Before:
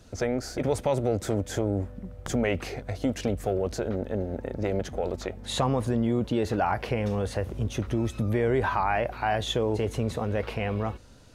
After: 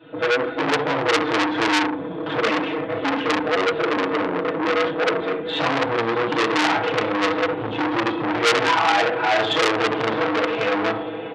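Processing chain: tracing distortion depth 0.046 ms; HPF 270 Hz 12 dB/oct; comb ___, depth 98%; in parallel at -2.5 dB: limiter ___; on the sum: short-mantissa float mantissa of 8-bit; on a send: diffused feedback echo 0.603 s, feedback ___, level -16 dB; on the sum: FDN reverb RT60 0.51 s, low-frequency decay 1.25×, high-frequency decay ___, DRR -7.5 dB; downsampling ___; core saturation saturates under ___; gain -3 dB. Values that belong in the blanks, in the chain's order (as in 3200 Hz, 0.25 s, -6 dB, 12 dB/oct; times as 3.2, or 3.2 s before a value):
6.2 ms, -19 dBFS, 72%, 0.75×, 8000 Hz, 3500 Hz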